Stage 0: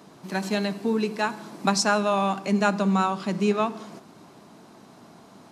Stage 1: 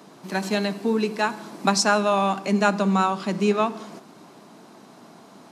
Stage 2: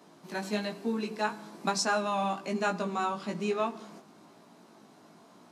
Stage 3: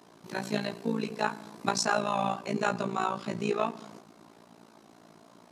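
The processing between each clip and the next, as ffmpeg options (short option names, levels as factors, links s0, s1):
-af "highpass=160,volume=1.33"
-af "flanger=delay=17:depth=2.2:speed=1.1,volume=0.531"
-af "tremolo=f=57:d=0.857,volume=1.68"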